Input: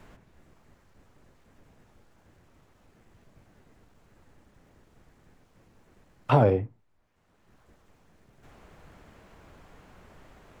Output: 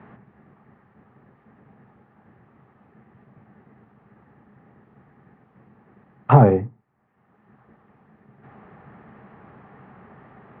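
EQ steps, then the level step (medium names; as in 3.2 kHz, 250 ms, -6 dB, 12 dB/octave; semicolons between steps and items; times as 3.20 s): cabinet simulation 120–2700 Hz, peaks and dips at 130 Hz +9 dB, 210 Hz +10 dB, 410 Hz +6 dB, 800 Hz +10 dB, 1.2 kHz +9 dB, 1.8 kHz +8 dB; bass shelf 390 Hz +6.5 dB; -1.5 dB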